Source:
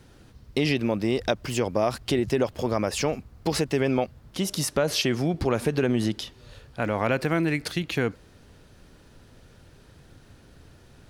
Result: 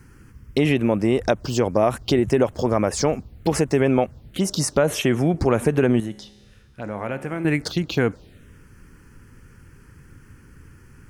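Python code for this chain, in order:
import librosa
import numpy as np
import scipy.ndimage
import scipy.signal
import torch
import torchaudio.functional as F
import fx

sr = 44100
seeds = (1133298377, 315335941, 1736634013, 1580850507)

y = fx.env_phaser(x, sr, low_hz=600.0, high_hz=4800.0, full_db=-21.5)
y = fx.comb_fb(y, sr, f0_hz=69.0, decay_s=1.6, harmonics='all', damping=0.0, mix_pct=70, at=(6.0, 7.45))
y = F.gain(torch.from_numpy(y), 5.5).numpy()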